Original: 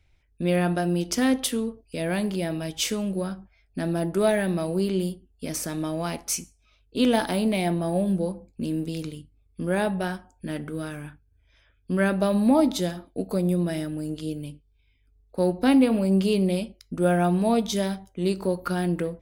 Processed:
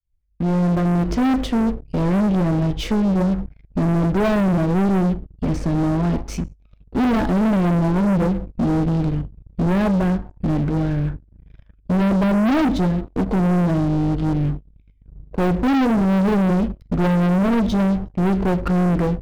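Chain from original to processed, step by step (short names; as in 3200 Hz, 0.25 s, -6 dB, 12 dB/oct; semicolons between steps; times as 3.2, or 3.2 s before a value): opening faded in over 1.07 s; LPF 5100 Hz 12 dB/oct; tilt -4.5 dB/oct; sample leveller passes 3; soft clip -12 dBFS, distortion -12 dB; gain -3.5 dB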